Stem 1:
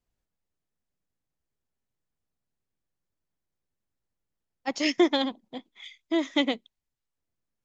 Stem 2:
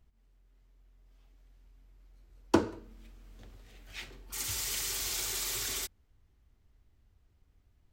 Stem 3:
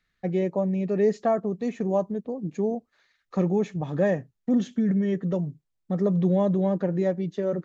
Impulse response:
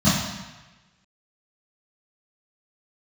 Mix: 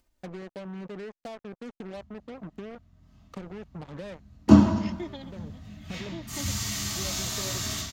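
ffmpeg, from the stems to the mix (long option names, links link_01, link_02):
-filter_complex "[0:a]aecho=1:1:3.3:0.65,volume=-19.5dB,asplit=2[link_01][link_02];[1:a]adelay=1950,volume=-4.5dB,asplit=2[link_03][link_04];[link_04]volume=-10dB[link_05];[2:a]acompressor=threshold=-32dB:ratio=16,acrusher=bits=5:mix=0:aa=0.5,volume=-5dB,asplit=3[link_06][link_07][link_08];[link_06]atrim=end=6.22,asetpts=PTS-STARTPTS,afade=type=out:start_time=6.216:duration=0.004:curve=hsin[link_09];[link_07]atrim=start=6.22:end=6.95,asetpts=PTS-STARTPTS,volume=0[link_10];[link_08]atrim=start=6.95,asetpts=PTS-STARTPTS,afade=type=in:duration=0.004:curve=hsin[link_11];[link_09][link_10][link_11]concat=n=3:v=0:a=1[link_12];[link_02]apad=whole_len=337172[link_13];[link_12][link_13]sidechaincompress=threshold=-46dB:ratio=8:attack=49:release=422[link_14];[3:a]atrim=start_sample=2205[link_15];[link_05][link_15]afir=irnorm=-1:irlink=0[link_16];[link_01][link_03][link_14][link_16]amix=inputs=4:normalize=0,acompressor=mode=upward:threshold=-50dB:ratio=2.5"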